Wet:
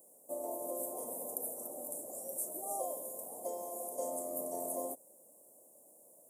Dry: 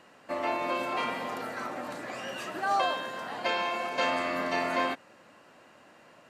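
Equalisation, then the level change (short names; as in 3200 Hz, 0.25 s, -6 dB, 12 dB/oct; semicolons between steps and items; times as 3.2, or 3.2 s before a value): elliptic band-stop 580–9500 Hz, stop band 50 dB; differentiator; +17.5 dB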